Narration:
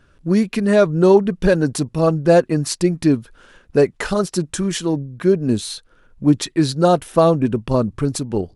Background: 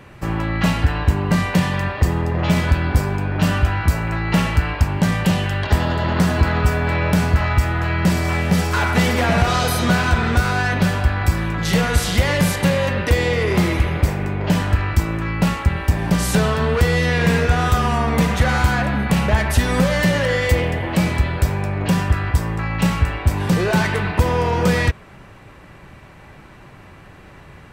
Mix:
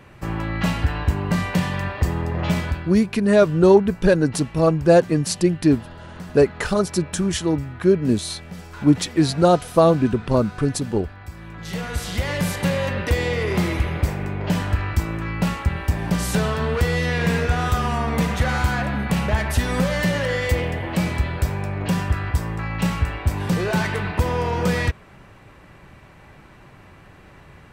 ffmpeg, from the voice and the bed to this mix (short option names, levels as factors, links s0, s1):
-filter_complex "[0:a]adelay=2600,volume=0.891[s0];[1:a]volume=3.76,afade=t=out:st=2.51:d=0.44:silence=0.16788,afade=t=in:st=11.31:d=1.44:silence=0.16788[s1];[s0][s1]amix=inputs=2:normalize=0"